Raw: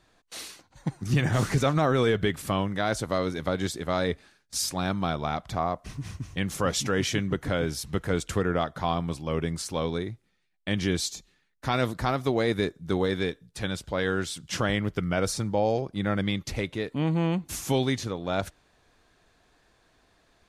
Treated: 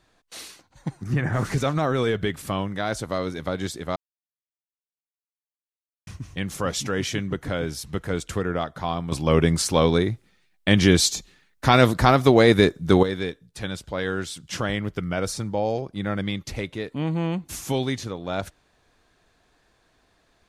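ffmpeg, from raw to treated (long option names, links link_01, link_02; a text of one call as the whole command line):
ffmpeg -i in.wav -filter_complex "[0:a]asplit=3[link_01][link_02][link_03];[link_01]afade=type=out:start_time=1.03:duration=0.02[link_04];[link_02]highshelf=frequency=2400:width_type=q:width=1.5:gain=-8.5,afade=type=in:start_time=1.03:duration=0.02,afade=type=out:start_time=1.44:duration=0.02[link_05];[link_03]afade=type=in:start_time=1.44:duration=0.02[link_06];[link_04][link_05][link_06]amix=inputs=3:normalize=0,asplit=5[link_07][link_08][link_09][link_10][link_11];[link_07]atrim=end=3.96,asetpts=PTS-STARTPTS,afade=type=out:start_time=3.956:duration=0.004:curve=hsin[link_12];[link_08]atrim=start=3.96:end=6.07,asetpts=PTS-STARTPTS,volume=0[link_13];[link_09]atrim=start=6.07:end=9.122,asetpts=PTS-STARTPTS,afade=type=in:duration=0.004:curve=hsin[link_14];[link_10]atrim=start=9.118:end=13.032,asetpts=PTS-STARTPTS,volume=10dB[link_15];[link_11]atrim=start=13.028[link_16];[link_12][link_13][link_14]concat=n=3:v=0:a=1[link_17];[link_17][link_15]acrossfade=duration=0.004:curve1=hsin:curve2=hsin[link_18];[link_18][link_16]acrossfade=duration=0.004:curve1=hsin:curve2=hsin" out.wav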